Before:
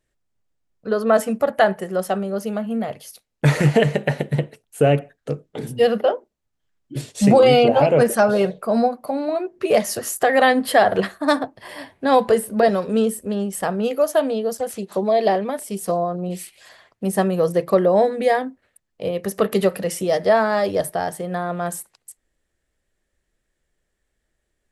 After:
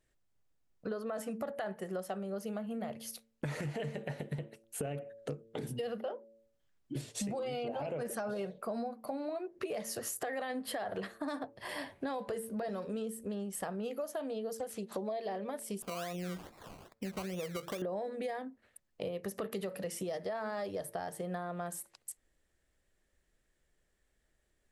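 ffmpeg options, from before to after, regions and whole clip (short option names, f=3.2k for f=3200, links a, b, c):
-filter_complex "[0:a]asettb=1/sr,asplit=3[a][b][c];[a]atrim=end=15.824[d];[b]atrim=start=15.82:end=17.82,asetpts=PTS-STARTPTS,afade=t=in:d=0.004:c=qsin,afade=t=out:st=1.996:d=0.004:c=qsin,acompressor=threshold=-32dB:ratio=2.5:attack=3.2:release=140:knee=1:detection=peak,lowpass=4.4k,acrusher=samples=20:mix=1:aa=0.000001:lfo=1:lforange=12:lforate=2.4[e];[c]atrim=start=17.816[f];[d][e]acrossfade=d=0.004:c1=hsin:c2=qsin[g];[g][f]acrossfade=d=0.004:c1=qsin:c2=hsin,bandreject=f=112.7:t=h:w=4,bandreject=f=225.4:t=h:w=4,bandreject=f=338.1:t=h:w=4,bandreject=f=450.8:t=h:w=4,bandreject=f=563.5:t=h:w=4,alimiter=limit=-12dB:level=0:latency=1:release=20,acompressor=threshold=-34dB:ratio=6,volume=-2.5dB"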